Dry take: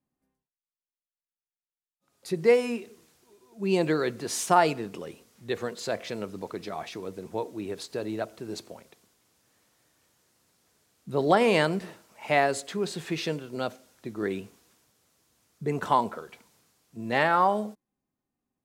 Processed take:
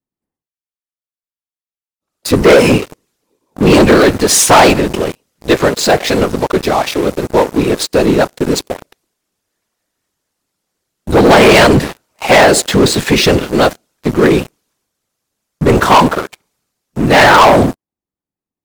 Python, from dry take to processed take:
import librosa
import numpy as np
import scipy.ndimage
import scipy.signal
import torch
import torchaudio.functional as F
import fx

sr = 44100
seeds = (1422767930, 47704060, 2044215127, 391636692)

y = fx.whisperise(x, sr, seeds[0])
y = fx.leveller(y, sr, passes=5)
y = y * librosa.db_to_amplitude(5.0)